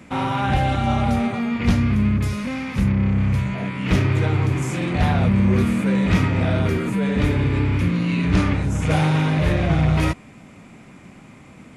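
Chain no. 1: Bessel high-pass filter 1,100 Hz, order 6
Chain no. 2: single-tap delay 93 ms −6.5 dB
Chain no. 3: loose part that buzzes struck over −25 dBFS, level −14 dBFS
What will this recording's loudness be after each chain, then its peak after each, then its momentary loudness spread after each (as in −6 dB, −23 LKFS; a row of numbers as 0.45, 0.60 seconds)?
−31.5, −19.0, −19.5 LKFS; −15.5, −5.0, −5.5 dBFS; 7, 5, 4 LU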